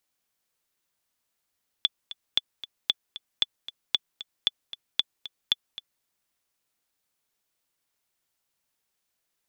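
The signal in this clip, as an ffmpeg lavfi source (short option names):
-f lavfi -i "aevalsrc='pow(10,(-8-15.5*gte(mod(t,2*60/229),60/229))/20)*sin(2*PI*3460*mod(t,60/229))*exp(-6.91*mod(t,60/229)/0.03)':d=4.19:s=44100"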